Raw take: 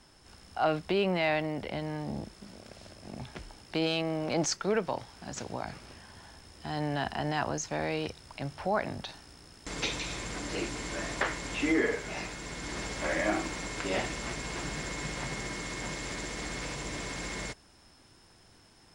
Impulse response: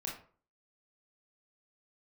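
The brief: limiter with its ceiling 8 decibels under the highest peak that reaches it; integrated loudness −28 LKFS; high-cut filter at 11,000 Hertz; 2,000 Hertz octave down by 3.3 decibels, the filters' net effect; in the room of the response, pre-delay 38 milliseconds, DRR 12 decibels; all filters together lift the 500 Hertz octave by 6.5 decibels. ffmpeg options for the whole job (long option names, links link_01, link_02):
-filter_complex "[0:a]lowpass=11000,equalizer=frequency=500:width_type=o:gain=8.5,equalizer=frequency=2000:width_type=o:gain=-4.5,alimiter=limit=-19dB:level=0:latency=1,asplit=2[link_01][link_02];[1:a]atrim=start_sample=2205,adelay=38[link_03];[link_02][link_03]afir=irnorm=-1:irlink=0,volume=-12.5dB[link_04];[link_01][link_04]amix=inputs=2:normalize=0,volume=4dB"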